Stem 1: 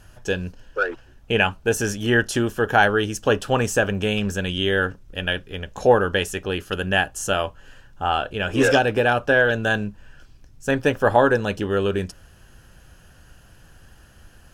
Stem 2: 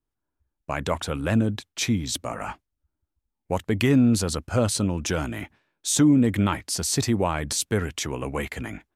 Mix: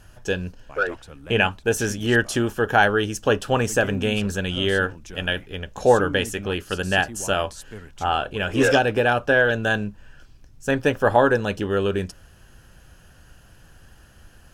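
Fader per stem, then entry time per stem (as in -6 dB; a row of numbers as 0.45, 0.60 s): -0.5, -15.0 dB; 0.00, 0.00 s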